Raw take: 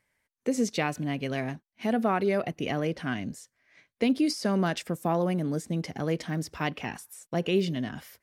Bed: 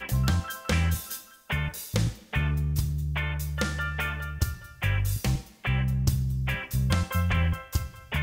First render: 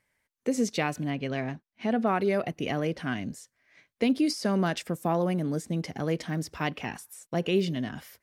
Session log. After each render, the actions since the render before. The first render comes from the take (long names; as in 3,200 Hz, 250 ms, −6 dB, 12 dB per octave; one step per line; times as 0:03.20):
0:01.10–0:02.07: high-frequency loss of the air 74 metres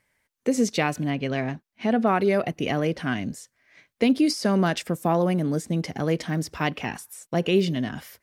level +4.5 dB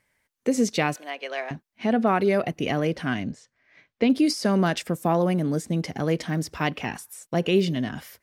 0:00.96–0:01.51: high-pass filter 510 Hz 24 dB per octave
0:03.23–0:04.10: high-frequency loss of the air 120 metres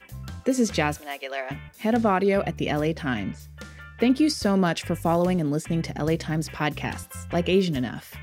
mix in bed −13 dB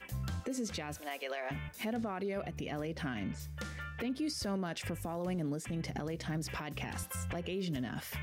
downward compressor 4 to 1, threshold −31 dBFS, peak gain reduction 13 dB
brickwall limiter −29 dBFS, peak gain reduction 11 dB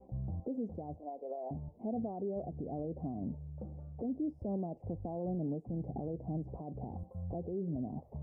elliptic low-pass filter 770 Hz, stop band 50 dB